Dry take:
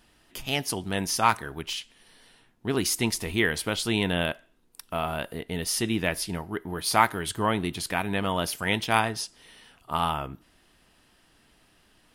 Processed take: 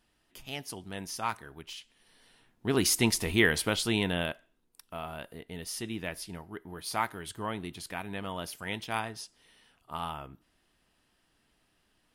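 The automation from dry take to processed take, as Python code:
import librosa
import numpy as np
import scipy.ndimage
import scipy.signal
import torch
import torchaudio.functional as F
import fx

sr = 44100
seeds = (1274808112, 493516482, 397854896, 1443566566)

y = fx.gain(x, sr, db=fx.line((1.74, -11.0), (2.85, 0.5), (3.58, 0.5), (4.82, -10.0)))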